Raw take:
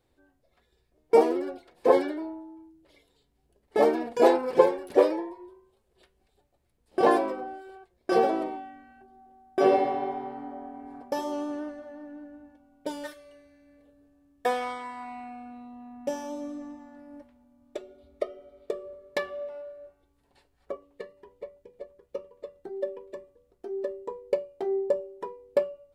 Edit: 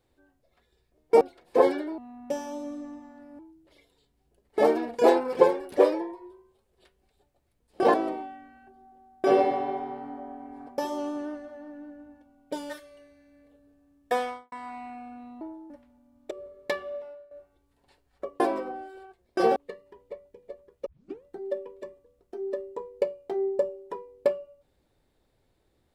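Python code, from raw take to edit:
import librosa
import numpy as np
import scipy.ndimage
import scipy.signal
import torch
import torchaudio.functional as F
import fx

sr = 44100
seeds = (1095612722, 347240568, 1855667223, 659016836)

y = fx.studio_fade_out(x, sr, start_s=14.54, length_s=0.32)
y = fx.edit(y, sr, fx.cut(start_s=1.21, length_s=0.3),
    fx.swap(start_s=2.28, length_s=0.29, other_s=15.75, other_length_s=1.41),
    fx.move(start_s=7.12, length_s=1.16, to_s=20.87),
    fx.cut(start_s=17.77, length_s=1.01),
    fx.fade_out_to(start_s=19.42, length_s=0.36, floor_db=-12.5),
    fx.tape_start(start_s=22.17, length_s=0.38), tone=tone)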